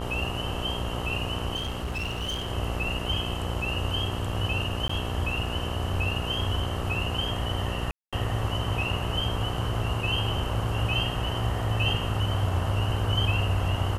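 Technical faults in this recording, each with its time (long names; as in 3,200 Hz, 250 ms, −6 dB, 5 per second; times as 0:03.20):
mains buzz 60 Hz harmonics 22 −33 dBFS
0:01.55–0:02.52: clipping −27 dBFS
0:04.88–0:04.89: drop-out 14 ms
0:07.91–0:08.13: drop-out 216 ms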